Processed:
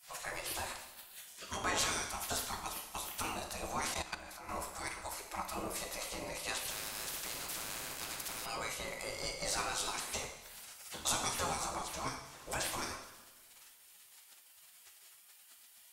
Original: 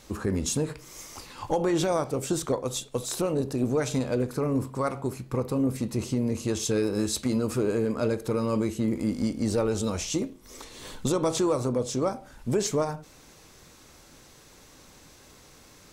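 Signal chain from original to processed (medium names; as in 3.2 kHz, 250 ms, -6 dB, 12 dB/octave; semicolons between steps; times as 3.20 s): spectral gate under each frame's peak -20 dB weak; two-slope reverb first 0.84 s, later 2.5 s, from -18 dB, DRR 2.5 dB; 3.94–4.49 s: level held to a coarse grid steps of 13 dB; 6.70–8.46 s: spectrum-flattening compressor 4:1; trim +2.5 dB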